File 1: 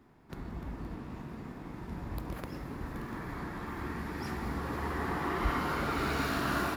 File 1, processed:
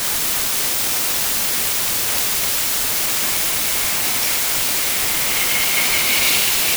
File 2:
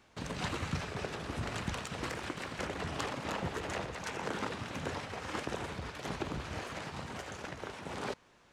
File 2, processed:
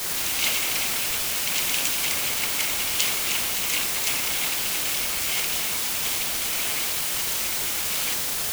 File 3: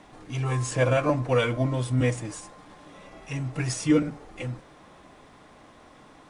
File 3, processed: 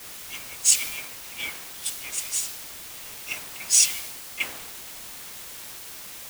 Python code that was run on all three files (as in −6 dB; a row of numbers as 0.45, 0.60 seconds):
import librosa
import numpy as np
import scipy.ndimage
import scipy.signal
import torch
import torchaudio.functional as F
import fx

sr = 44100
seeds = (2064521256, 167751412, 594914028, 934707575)

p1 = fx.over_compress(x, sr, threshold_db=-33.0, ratio=-0.5)
p2 = x + (p1 * 10.0 ** (2.5 / 20.0))
p3 = scipy.signal.sosfilt(scipy.signal.cheby1(6, 3, 2100.0, 'highpass', fs=sr, output='sos'), p2)
p4 = fx.quant_dither(p3, sr, seeds[0], bits=6, dither='triangular')
p5 = fx.band_widen(p4, sr, depth_pct=100)
y = p5 * 10.0 ** (-3 / 20.0) / np.max(np.abs(p5))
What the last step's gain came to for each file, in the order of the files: +17.0, +10.0, −1.0 decibels